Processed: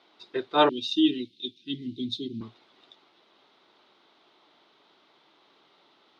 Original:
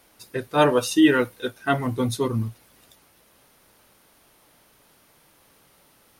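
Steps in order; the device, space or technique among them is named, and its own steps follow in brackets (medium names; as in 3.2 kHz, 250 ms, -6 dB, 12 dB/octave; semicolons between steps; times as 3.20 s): phone earpiece (cabinet simulation 330–4000 Hz, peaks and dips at 360 Hz +5 dB, 520 Hz -7 dB, 1.7 kHz -6 dB, 2.5 kHz -4 dB, 3.7 kHz +7 dB); 0.69–2.41 s: inverse Chebyshev band-stop 630–1400 Hz, stop band 60 dB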